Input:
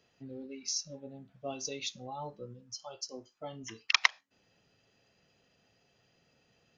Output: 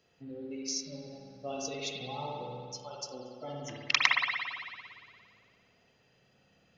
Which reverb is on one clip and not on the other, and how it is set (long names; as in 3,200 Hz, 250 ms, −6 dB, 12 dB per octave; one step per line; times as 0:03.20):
spring reverb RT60 2 s, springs 56 ms, chirp 40 ms, DRR −2 dB
level −1 dB